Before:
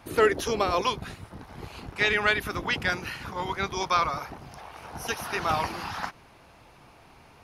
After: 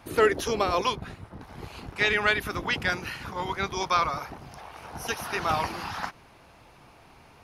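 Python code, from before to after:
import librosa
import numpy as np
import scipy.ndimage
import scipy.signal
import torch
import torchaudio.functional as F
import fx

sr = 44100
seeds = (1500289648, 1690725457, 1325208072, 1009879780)

y = fx.high_shelf(x, sr, hz=3000.0, db=-9.0, at=(0.95, 1.41))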